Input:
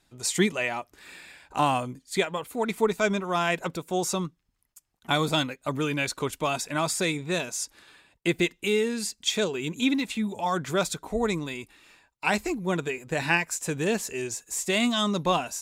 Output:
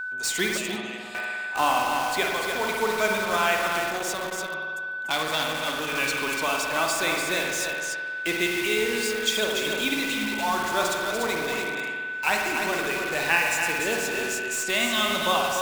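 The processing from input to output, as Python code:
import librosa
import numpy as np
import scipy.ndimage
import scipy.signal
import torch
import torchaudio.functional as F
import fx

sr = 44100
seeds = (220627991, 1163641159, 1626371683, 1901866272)

p1 = fx.weighting(x, sr, curve='A')
p2 = p1 + fx.echo_single(p1, sr, ms=292, db=-6.0, dry=0)
p3 = fx.rev_spring(p2, sr, rt60_s=1.6, pass_ms=(51,), chirp_ms=65, drr_db=1.0)
p4 = p3 + 10.0 ** (-33.0 / 20.0) * np.sin(2.0 * np.pi * 1500.0 * np.arange(len(p3)) / sr)
p5 = fx.band_shelf(p4, sr, hz=1100.0, db=-12.5, octaves=2.8, at=(0.57, 1.15))
p6 = (np.mod(10.0 ** (25.5 / 20.0) * p5 + 1.0, 2.0) - 1.0) / 10.0 ** (25.5 / 20.0)
p7 = p5 + F.gain(torch.from_numpy(p6), -6.5).numpy()
y = fx.transformer_sat(p7, sr, knee_hz=2700.0, at=(3.92, 5.92))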